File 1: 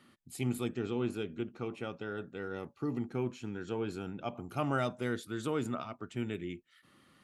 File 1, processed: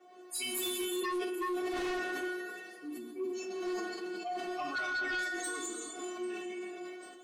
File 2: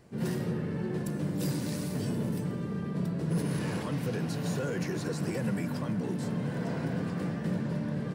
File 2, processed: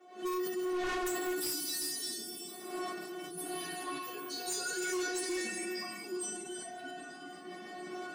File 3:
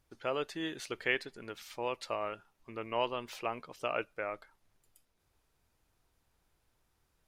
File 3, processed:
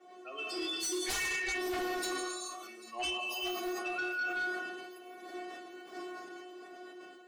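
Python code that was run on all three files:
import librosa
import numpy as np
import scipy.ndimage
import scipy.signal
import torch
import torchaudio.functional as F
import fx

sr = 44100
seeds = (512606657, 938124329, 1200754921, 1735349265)

y = fx.bin_expand(x, sr, power=3.0)
y = fx.dmg_wind(y, sr, seeds[0], corner_hz=580.0, level_db=-47.0)
y = scipy.signal.sosfilt(scipy.signal.butter(4, 240.0, 'highpass', fs=sr, output='sos'), y)
y = fx.high_shelf(y, sr, hz=3000.0, db=11.0)
y = fx.notch(y, sr, hz=970.0, q=5.1)
y = fx.dynamic_eq(y, sr, hz=520.0, q=2.2, threshold_db=-55.0, ratio=4.0, max_db=-6)
y = fx.stiff_resonator(y, sr, f0_hz=360.0, decay_s=0.43, stiffness=0.002)
y = fx.echo_wet_highpass(y, sr, ms=793, feedback_pct=50, hz=3200.0, wet_db=-20)
y = fx.rev_gated(y, sr, seeds[1], gate_ms=450, shape='flat', drr_db=-0.5)
y = fx.fold_sine(y, sr, drive_db=12, ceiling_db=-37.5)
y = fx.sustainer(y, sr, db_per_s=32.0)
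y = y * 10.0 ** (6.5 / 20.0)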